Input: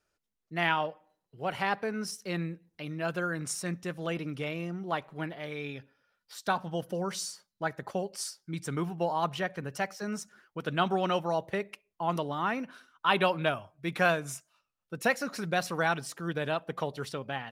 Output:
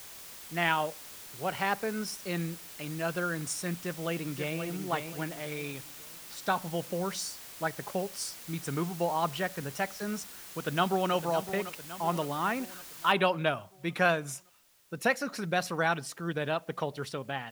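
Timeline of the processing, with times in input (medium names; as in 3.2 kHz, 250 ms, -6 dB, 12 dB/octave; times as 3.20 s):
3.74–4.59 s: echo throw 530 ms, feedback 35%, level -7 dB
10.20–11.13 s: echo throw 560 ms, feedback 55%, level -11.5 dB
13.12 s: noise floor step -47 dB -65 dB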